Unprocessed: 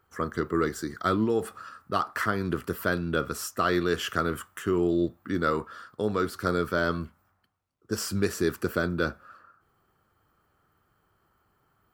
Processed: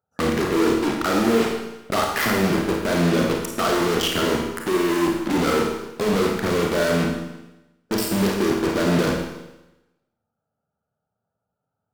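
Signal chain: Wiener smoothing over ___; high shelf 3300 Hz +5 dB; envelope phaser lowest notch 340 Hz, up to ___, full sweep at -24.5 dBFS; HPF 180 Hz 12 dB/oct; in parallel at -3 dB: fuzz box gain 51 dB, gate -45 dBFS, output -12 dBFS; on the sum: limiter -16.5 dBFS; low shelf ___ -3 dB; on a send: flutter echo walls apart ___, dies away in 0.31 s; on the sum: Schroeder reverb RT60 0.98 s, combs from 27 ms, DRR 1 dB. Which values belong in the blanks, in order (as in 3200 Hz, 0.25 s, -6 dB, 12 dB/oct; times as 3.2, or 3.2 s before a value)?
41 samples, 2300 Hz, 440 Hz, 8.9 m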